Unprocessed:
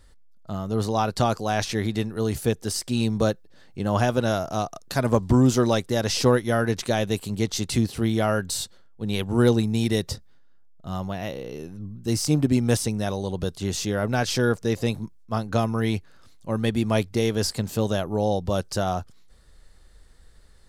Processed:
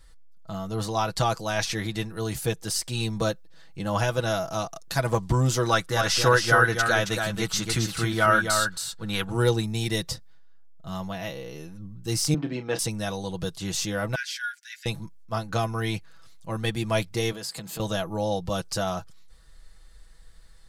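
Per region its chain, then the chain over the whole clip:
5.65–9.30 s: peaking EQ 1.4 kHz +12 dB 0.63 oct + delay 272 ms -5.5 dB
12.34–12.79 s: high-pass 180 Hz 24 dB/octave + distance through air 250 m + doubling 32 ms -9.5 dB
14.15–14.86 s: brick-wall FIR high-pass 1.4 kHz + treble shelf 2.7 kHz -11 dB + comb 7 ms, depth 41%
17.32–17.80 s: high-pass 130 Hz 24 dB/octave + band-stop 5.7 kHz, Q 9.5 + compression 2.5:1, threshold -33 dBFS
whole clip: peaking EQ 310 Hz -7.5 dB 2.2 oct; comb 6.1 ms, depth 64%

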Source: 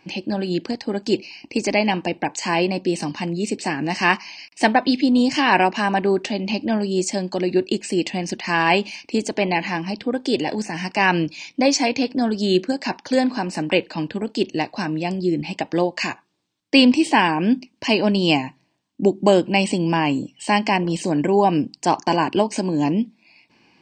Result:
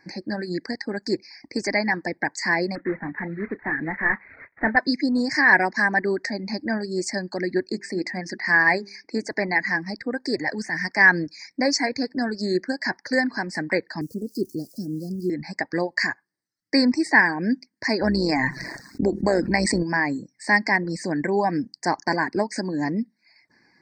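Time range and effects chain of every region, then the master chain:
2.75–4.77 s: CVSD coder 16 kbps + doubling 31 ms -11 dB
7.71–9.31 s: high-pass 110 Hz + distance through air 58 m + hum notches 50/100/150/200/250/300/350/400 Hz
14.01–15.30 s: zero-crossing glitches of -25 dBFS + inverse Chebyshev band-stop 910–2800 Hz, stop band 50 dB + tone controls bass +2 dB, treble -8 dB
18.01–19.83 s: AM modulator 130 Hz, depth 35% + level flattener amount 70%
whole clip: elliptic band-stop 1.9–4.9 kHz, stop band 80 dB; reverb removal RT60 0.52 s; high-order bell 2.7 kHz +14.5 dB; trim -4.5 dB

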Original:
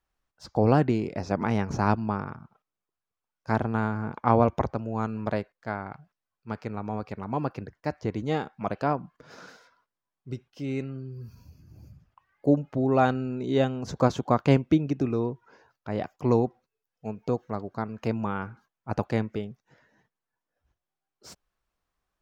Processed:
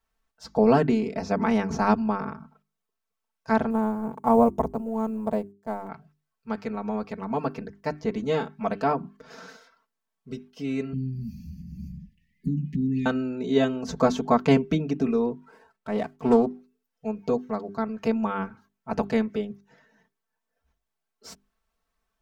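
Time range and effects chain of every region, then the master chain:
3.70–5.89 s: companding laws mixed up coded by A + high-order bell 2.7 kHz -12 dB 2.4 oct
10.93–13.06 s: resonant low shelf 270 Hz +10.5 dB, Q 3 + compression, threshold -22 dBFS + brick-wall FIR band-stop 410–1700 Hz
15.31–16.46 s: median filter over 9 samples + loudspeaker Doppler distortion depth 0.24 ms
whole clip: hum notches 50/100/150/200/250/300/350/400 Hz; comb 4.5 ms, depth 97%

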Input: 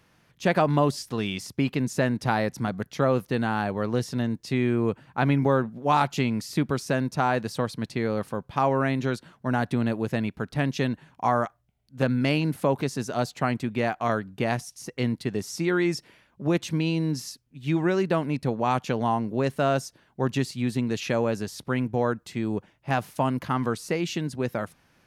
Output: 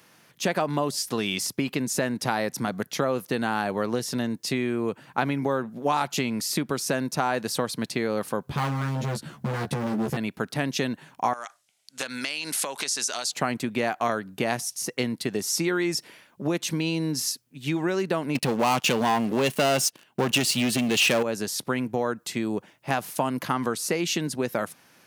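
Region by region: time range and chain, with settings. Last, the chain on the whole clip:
8.47–10.17 s: tone controls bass +15 dB, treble 0 dB + hard clipper -21.5 dBFS + doubling 14 ms -2.5 dB
11.33–13.32 s: frequency weighting ITU-R 468 + compression 16:1, threshold -32 dBFS
18.35–21.23 s: peaking EQ 2.8 kHz +10 dB 0.39 oct + waveshaping leveller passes 3
whole clip: compression, threshold -26 dBFS; Bessel high-pass 210 Hz, order 2; treble shelf 6 kHz +9.5 dB; trim +5.5 dB

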